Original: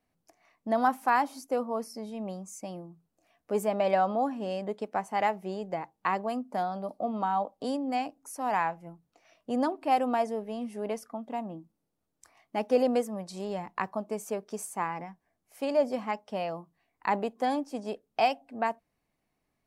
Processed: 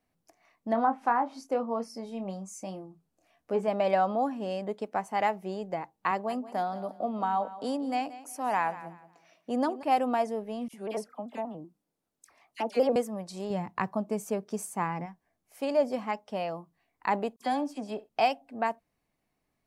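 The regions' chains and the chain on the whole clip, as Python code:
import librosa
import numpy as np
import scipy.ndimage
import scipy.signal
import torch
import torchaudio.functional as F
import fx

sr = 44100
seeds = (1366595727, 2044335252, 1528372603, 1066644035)

y = fx.chain(x, sr, fx.env_lowpass_down(base_hz=1100.0, full_db=-20.0),
    fx.doubler(ms=26.0, db=-9), at=(0.7, 3.68))
y = fx.chain(y, sr, fx.highpass(hz=150.0, slope=12),
    fx.echo_feedback(ms=180, feedback_pct=27, wet_db=-15.5), at=(6.11, 9.83))
y = fx.chain(y, sr, fx.low_shelf(hz=110.0, db=-11.5),
    fx.dispersion(late='lows', ms=56.0, hz=1600.0),
    fx.vibrato_shape(shape='square', rate_hz=5.2, depth_cents=100.0), at=(10.68, 12.96))
y = fx.chain(y, sr, fx.highpass(hz=49.0, slope=12),
    fx.peak_eq(hz=130.0, db=9.0, octaves=1.8), at=(13.5, 15.06))
y = fx.chain(y, sr, fx.notch(hz=490.0, q=6.4),
    fx.dispersion(late='lows', ms=43.0, hz=2600.0),
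    fx.room_flutter(wall_m=11.8, rt60_s=0.21), at=(17.36, 18.09))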